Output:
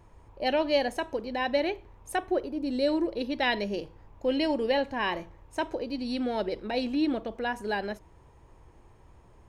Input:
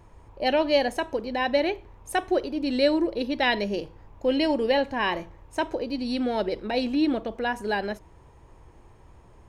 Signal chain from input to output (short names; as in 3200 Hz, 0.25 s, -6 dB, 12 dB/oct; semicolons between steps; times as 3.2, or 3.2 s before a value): 2.15–2.87 bell 8600 Hz -> 1800 Hz -8.5 dB 1.9 oct; gain -3.5 dB